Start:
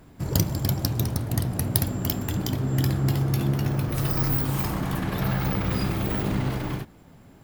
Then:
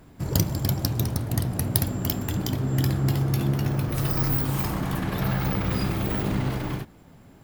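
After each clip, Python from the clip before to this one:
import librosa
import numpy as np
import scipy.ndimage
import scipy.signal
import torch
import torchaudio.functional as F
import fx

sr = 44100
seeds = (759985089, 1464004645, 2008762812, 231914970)

y = x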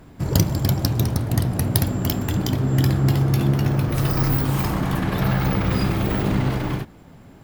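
y = fx.high_shelf(x, sr, hz=6500.0, db=-5.0)
y = y * librosa.db_to_amplitude(5.0)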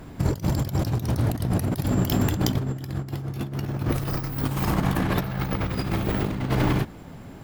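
y = fx.over_compress(x, sr, threshold_db=-24.0, ratio=-0.5)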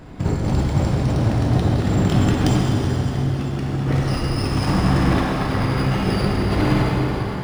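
y = fx.rev_plate(x, sr, seeds[0], rt60_s=4.8, hf_ratio=0.8, predelay_ms=0, drr_db=-5.0)
y = np.interp(np.arange(len(y)), np.arange(len(y))[::3], y[::3])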